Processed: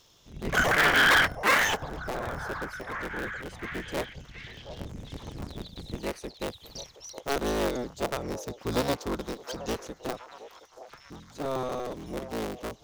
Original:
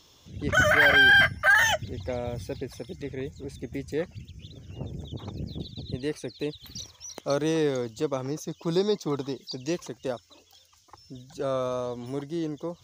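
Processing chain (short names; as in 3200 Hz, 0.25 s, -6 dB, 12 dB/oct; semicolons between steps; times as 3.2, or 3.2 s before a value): cycle switcher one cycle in 3, inverted; delay with a stepping band-pass 0.72 s, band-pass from 640 Hz, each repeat 0.7 oct, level -10 dB; gain -3 dB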